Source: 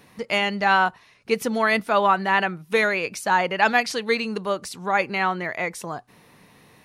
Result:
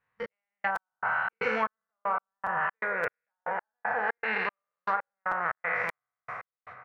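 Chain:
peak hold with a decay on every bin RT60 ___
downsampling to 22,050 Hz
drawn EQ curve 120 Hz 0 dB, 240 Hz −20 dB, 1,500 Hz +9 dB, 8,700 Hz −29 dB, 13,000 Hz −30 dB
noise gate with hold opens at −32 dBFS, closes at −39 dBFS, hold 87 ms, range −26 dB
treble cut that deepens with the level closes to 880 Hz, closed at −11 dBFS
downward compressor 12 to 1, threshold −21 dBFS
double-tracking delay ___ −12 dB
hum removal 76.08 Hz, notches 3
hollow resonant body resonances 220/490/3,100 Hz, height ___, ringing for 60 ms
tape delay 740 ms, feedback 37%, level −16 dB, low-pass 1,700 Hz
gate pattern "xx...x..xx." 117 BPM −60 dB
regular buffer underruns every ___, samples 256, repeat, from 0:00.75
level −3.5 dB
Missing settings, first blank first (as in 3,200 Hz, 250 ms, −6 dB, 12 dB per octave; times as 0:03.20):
1.98 s, 41 ms, 8 dB, 0.57 s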